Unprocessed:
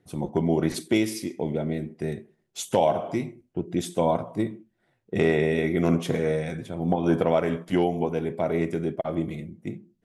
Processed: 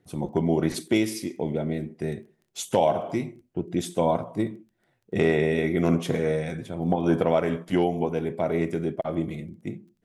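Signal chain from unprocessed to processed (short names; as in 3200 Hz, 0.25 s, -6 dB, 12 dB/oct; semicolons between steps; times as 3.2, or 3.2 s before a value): crackle 12/s -48 dBFS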